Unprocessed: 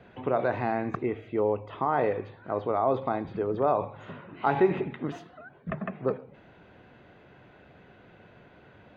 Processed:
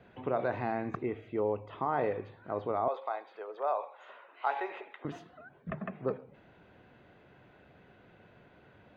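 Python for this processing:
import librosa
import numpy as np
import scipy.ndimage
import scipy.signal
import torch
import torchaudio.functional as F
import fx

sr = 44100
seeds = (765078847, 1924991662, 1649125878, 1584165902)

y = fx.highpass(x, sr, hz=550.0, slope=24, at=(2.88, 5.05))
y = y * librosa.db_to_amplitude(-5.0)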